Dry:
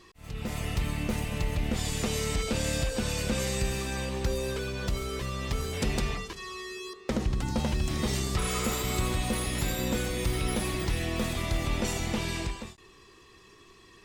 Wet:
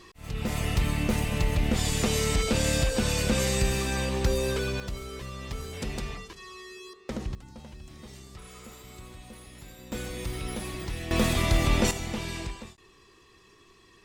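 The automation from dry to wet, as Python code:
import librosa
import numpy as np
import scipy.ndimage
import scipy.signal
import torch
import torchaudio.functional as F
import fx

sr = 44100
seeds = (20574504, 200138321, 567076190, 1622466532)

y = fx.gain(x, sr, db=fx.steps((0.0, 4.0), (4.8, -5.0), (7.35, -17.0), (9.92, -5.0), (11.11, 6.0), (11.91, -2.5)))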